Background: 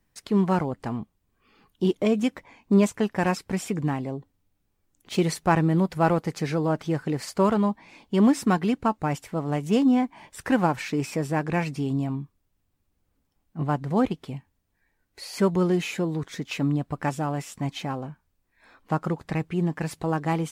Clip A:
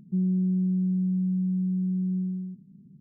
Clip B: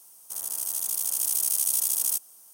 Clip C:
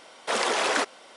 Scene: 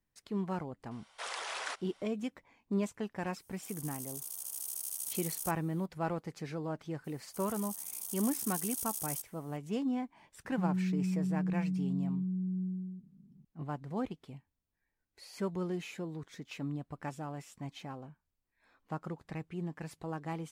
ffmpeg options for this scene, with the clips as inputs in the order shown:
ffmpeg -i bed.wav -i cue0.wav -i cue1.wav -i cue2.wav -filter_complex "[2:a]asplit=2[link_01][link_02];[0:a]volume=-13.5dB[link_03];[3:a]highpass=780,atrim=end=1.16,asetpts=PTS-STARTPTS,volume=-13dB,afade=type=in:duration=0.004:curve=hsin,afade=type=out:start_time=1.156:duration=0.004:curve=hsin,adelay=910[link_04];[link_01]atrim=end=2.53,asetpts=PTS-STARTPTS,volume=-14.5dB,afade=type=in:duration=0.004:curve=hsin,afade=type=out:start_time=2.526:duration=0.004:curve=hsin,adelay=146853S[link_05];[link_02]atrim=end=2.53,asetpts=PTS-STARTPTS,volume=-13.5dB,afade=type=in:duration=0.004:curve=hsin,afade=type=out:start_time=2.526:duration=0.004:curve=hsin,adelay=7040[link_06];[1:a]atrim=end=3,asetpts=PTS-STARTPTS,volume=-7.5dB,afade=type=in:duration=0.004:curve=hsin,afade=type=out:start_time=2.996:duration=0.004:curve=hsin,adelay=10450[link_07];[link_03][link_04][link_05][link_06][link_07]amix=inputs=5:normalize=0" out.wav

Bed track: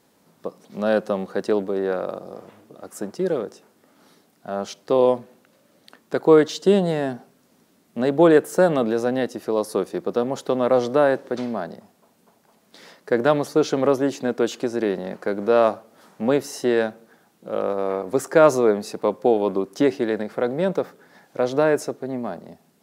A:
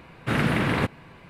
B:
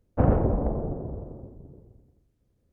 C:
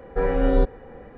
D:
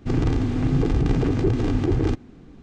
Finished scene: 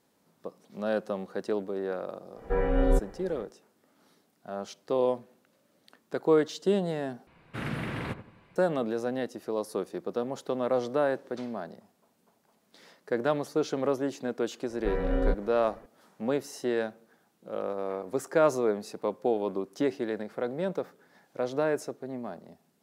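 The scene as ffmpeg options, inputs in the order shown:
ffmpeg -i bed.wav -i cue0.wav -i cue1.wav -i cue2.wav -filter_complex "[3:a]asplit=2[link_01][link_02];[0:a]volume=-9dB[link_03];[1:a]asplit=2[link_04][link_05];[link_05]adelay=86,lowpass=frequency=1200:poles=1,volume=-10.5dB,asplit=2[link_06][link_07];[link_07]adelay=86,lowpass=frequency=1200:poles=1,volume=0.39,asplit=2[link_08][link_09];[link_09]adelay=86,lowpass=frequency=1200:poles=1,volume=0.39,asplit=2[link_10][link_11];[link_11]adelay=86,lowpass=frequency=1200:poles=1,volume=0.39[link_12];[link_04][link_06][link_08][link_10][link_12]amix=inputs=5:normalize=0[link_13];[link_02]bandreject=frequency=790:width=13[link_14];[link_03]asplit=2[link_15][link_16];[link_15]atrim=end=7.274[link_17];[link_13]atrim=end=1.29,asetpts=PTS-STARTPTS,volume=-11.5dB[link_18];[link_16]atrim=start=8.556[link_19];[link_01]atrim=end=1.17,asetpts=PTS-STARTPTS,volume=-4.5dB,afade=type=in:duration=0.1,afade=type=out:start_time=1.07:duration=0.1,adelay=2340[link_20];[link_14]atrim=end=1.17,asetpts=PTS-STARTPTS,volume=-7.5dB,afade=type=in:duration=0.004:curve=hsin,afade=type=out:start_time=1.166:duration=0.004:curve=hsin,adelay=14690[link_21];[link_17][link_18]acrossfade=duration=0.004:curve1=hsin:curve2=hsin[link_22];[link_22][link_19]acrossfade=duration=0.004:curve1=hsin:curve2=hsin[link_23];[link_23][link_20][link_21]amix=inputs=3:normalize=0" out.wav

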